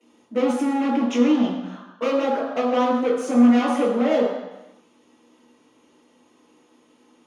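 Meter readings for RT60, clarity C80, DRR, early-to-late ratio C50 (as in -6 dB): 1.0 s, 5.0 dB, -13.5 dB, 2.0 dB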